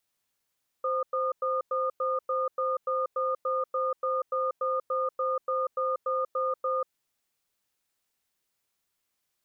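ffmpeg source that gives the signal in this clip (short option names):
-f lavfi -i "aevalsrc='0.0398*(sin(2*PI*521*t)+sin(2*PI*1220*t))*clip(min(mod(t,0.29),0.19-mod(t,0.29))/0.005,0,1)':d=6.04:s=44100"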